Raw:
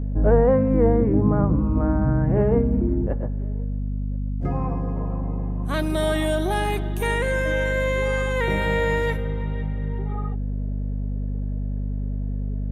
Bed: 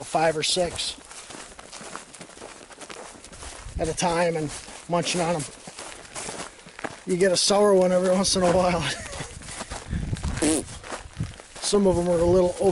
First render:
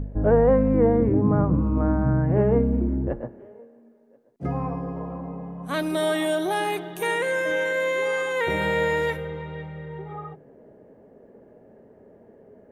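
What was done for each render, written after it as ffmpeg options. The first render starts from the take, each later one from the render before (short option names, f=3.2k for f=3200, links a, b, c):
-af "bandreject=f=50:t=h:w=4,bandreject=f=100:t=h:w=4,bandreject=f=150:t=h:w=4,bandreject=f=200:t=h:w=4,bandreject=f=250:t=h:w=4,bandreject=f=300:t=h:w=4,bandreject=f=350:t=h:w=4"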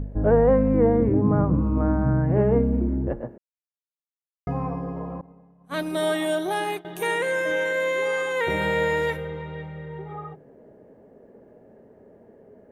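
-filter_complex "[0:a]asettb=1/sr,asplit=3[a][b][c];[a]atrim=end=5.214[d];[b]atrim=start=5.21:end=6.85,asetpts=PTS-STARTPTS,afade=t=in:d=0.004:c=qsin,afade=t=out:st=1.636:d=0.004:c=qsin,agate=range=-33dB:threshold=-24dB:ratio=3:release=100:detection=peak[e];[c]atrim=start=6.846[f];[d][e]acrossfade=d=0.004:c1=hsin:c2=qsin[g];[g][f]acrossfade=d=0.004:c1=qsin:c2=hsin,asplit=3[h][i][j];[h]atrim=end=3.38,asetpts=PTS-STARTPTS,afade=t=out:st=3.376:d=0.004:c=hsin[k];[i]atrim=start=3.38:end=4.47,asetpts=PTS-STARTPTS,volume=0[l];[j]atrim=start=4.47,asetpts=PTS-STARTPTS,afade=t=in:d=0.004:c=hsin[m];[k][l][m]concat=n=3:v=0:a=1"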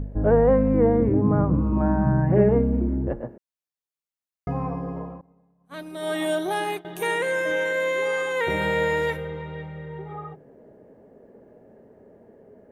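-filter_complex "[0:a]asettb=1/sr,asplit=3[a][b][c];[a]atrim=end=1.724[d];[b]atrim=start=1.72:end=2.49,asetpts=PTS-STARTPTS,afade=t=in:d=0.004:c=qsin,afade=t=out:st=0.766:d=0.004:c=qsin,aecho=1:1:5.3:0.82,atrim=end_sample=33957[e];[c]atrim=start=2.486[f];[d][e]acrossfade=d=0.004:c1=hsin:c2=qsin[g];[g][f]acrossfade=d=0.004:c1=qsin:c2=hsin,asplit=3[h][i][j];[h]atrim=end=5.21,asetpts=PTS-STARTPTS,afade=t=out:st=4.98:d=0.23:silence=0.354813[k];[i]atrim=start=5.21:end=5.99,asetpts=PTS-STARTPTS,volume=-9dB[l];[j]atrim=start=5.99,asetpts=PTS-STARTPTS,afade=t=in:d=0.23:silence=0.354813[m];[k][l][m]concat=n=3:v=0:a=1"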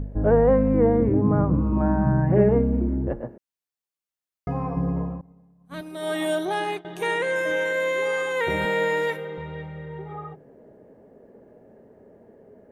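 -filter_complex "[0:a]asettb=1/sr,asplit=3[a][b][c];[a]atrim=end=4.764[d];[b]atrim=start=4.76:end=5.81,asetpts=PTS-STARTPTS,afade=t=in:d=0.004:c=qsin,afade=t=out:st=1.046:d=0.004:c=qsin,bass=f=250:g=10,treble=f=4k:g=1[e];[c]atrim=start=5.806[f];[d][e]acrossfade=d=0.004:c1=hsin:c2=qsin[g];[g][f]acrossfade=d=0.004:c1=qsin:c2=hsin,asettb=1/sr,asplit=3[h][i][j];[h]atrim=end=6.454[k];[i]atrim=start=6.45:end=7.36,asetpts=PTS-STARTPTS,afade=t=in:d=0.004:c=qsin,afade=t=out:st=0.906:d=0.004:c=qsin,lowpass=7.4k[l];[j]atrim=start=7.356[m];[k][l]acrossfade=d=0.004:c1=hsin:c2=qsin[n];[n][m]acrossfade=d=0.004:c1=qsin:c2=hsin,asettb=1/sr,asplit=3[o][p][q];[o]atrim=end=8.654[r];[p]atrim=start=8.65:end=9.38,asetpts=PTS-STARTPTS,afade=t=in:d=0.004:c=qsin,afade=t=out:st=0.726:d=0.004:c=qsin,highpass=f=180:w=0.5412,highpass=f=180:w=1.3066[s];[q]atrim=start=9.376[t];[r][s]acrossfade=d=0.004:c1=hsin:c2=qsin[u];[u][t]acrossfade=d=0.004:c1=qsin:c2=hsin"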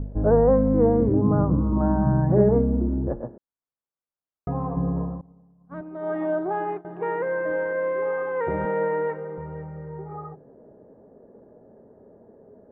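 -af "lowpass=f=1.4k:w=0.5412,lowpass=f=1.4k:w=1.3066"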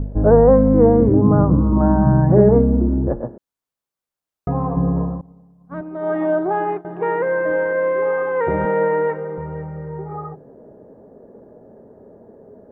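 -af "volume=6.5dB,alimiter=limit=-1dB:level=0:latency=1"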